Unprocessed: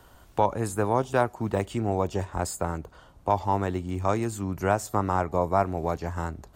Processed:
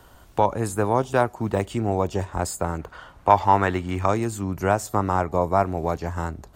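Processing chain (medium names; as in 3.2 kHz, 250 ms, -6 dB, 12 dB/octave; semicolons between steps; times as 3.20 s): 2.79–4.06 s: peaking EQ 1.7 kHz +10.5 dB 2.1 oct; trim +3 dB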